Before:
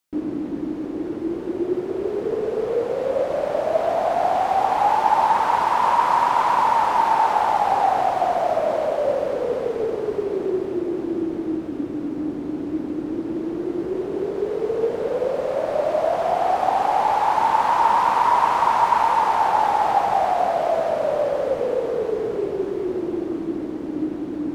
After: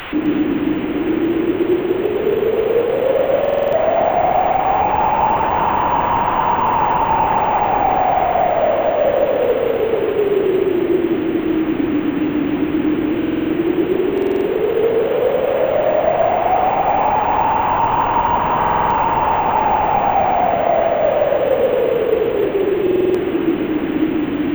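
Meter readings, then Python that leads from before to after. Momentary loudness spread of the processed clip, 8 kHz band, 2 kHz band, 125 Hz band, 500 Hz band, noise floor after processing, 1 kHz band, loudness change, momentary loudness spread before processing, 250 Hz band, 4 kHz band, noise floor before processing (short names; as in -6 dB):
3 LU, n/a, +6.0 dB, +10.5 dB, +7.0 dB, -21 dBFS, +3.0 dB, +5.0 dB, 10 LU, +8.5 dB, +5.5 dB, -30 dBFS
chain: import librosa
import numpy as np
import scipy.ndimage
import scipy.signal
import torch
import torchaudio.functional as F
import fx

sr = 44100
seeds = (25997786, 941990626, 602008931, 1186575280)

p1 = fx.delta_mod(x, sr, bps=16000, step_db=-29.0)
p2 = fx.rider(p1, sr, range_db=10, speed_s=0.5)
p3 = p1 + F.gain(torch.from_numpy(p2), -2.0).numpy()
p4 = fx.echo_alternate(p3, sr, ms=129, hz=930.0, feedback_pct=64, wet_db=-3.0)
p5 = np.repeat(scipy.signal.resample_poly(p4, 1, 2), 2)[:len(p4)]
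y = fx.buffer_glitch(p5, sr, at_s=(3.4, 13.18, 14.13, 18.58, 22.82), block=2048, repeats=6)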